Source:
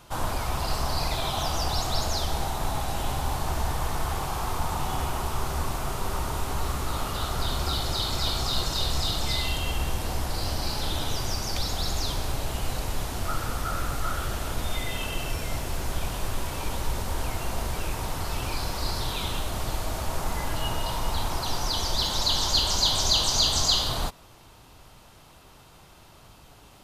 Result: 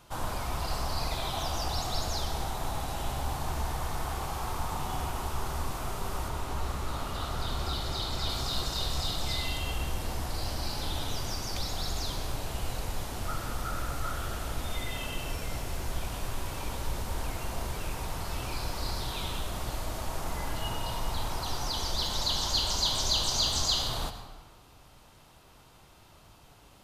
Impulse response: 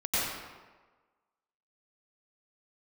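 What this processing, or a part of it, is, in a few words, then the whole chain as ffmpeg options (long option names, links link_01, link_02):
saturated reverb return: -filter_complex "[0:a]asplit=2[link_01][link_02];[1:a]atrim=start_sample=2205[link_03];[link_02][link_03]afir=irnorm=-1:irlink=0,asoftclip=type=tanh:threshold=-7.5dB,volume=-17dB[link_04];[link_01][link_04]amix=inputs=2:normalize=0,asettb=1/sr,asplit=3[link_05][link_06][link_07];[link_05]atrim=end=6.284[link_08];[link_06]atrim=start=6.28:end=8.3,asetpts=PTS-STARTPTS,afade=type=in:duration=0.004:curve=qsin,afade=type=out:start_time=2.016:duration=0.004:curve=qsin,highshelf=frequency=6800:gain=-5.5[link_09];[link_07]atrim=start=8.296[link_10];[link_08][link_09]acrossfade=duration=0.004:curve1=hsin:curve2=qsin[link_11];[link_11][link_10]acrossfade=duration=0.004:curve1=qsin:curve2=hsin,volume=-6dB"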